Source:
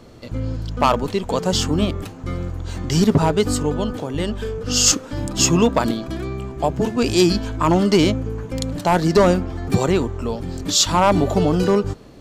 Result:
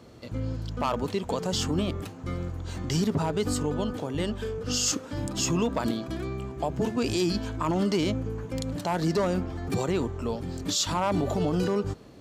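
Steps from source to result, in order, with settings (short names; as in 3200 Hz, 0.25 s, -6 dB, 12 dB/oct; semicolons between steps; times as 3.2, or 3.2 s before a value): HPF 53 Hz; limiter -12 dBFS, peak gain reduction 8 dB; gain -5.5 dB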